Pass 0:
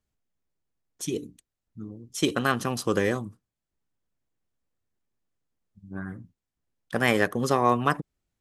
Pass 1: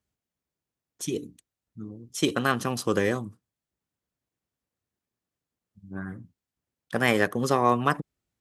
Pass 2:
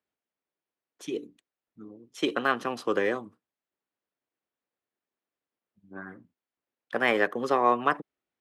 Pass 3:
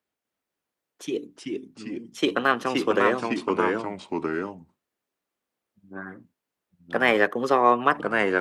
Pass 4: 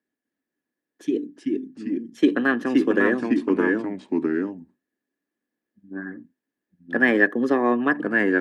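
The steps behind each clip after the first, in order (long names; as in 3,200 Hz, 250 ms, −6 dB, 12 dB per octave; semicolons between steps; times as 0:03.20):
high-pass filter 62 Hz
three-way crossover with the lows and the highs turned down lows −20 dB, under 260 Hz, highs −16 dB, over 3,700 Hz
delay with pitch and tempo change per echo 250 ms, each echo −2 semitones, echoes 2; level +4 dB
hollow resonant body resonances 270/1,700 Hz, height 18 dB, ringing for 25 ms; level −8 dB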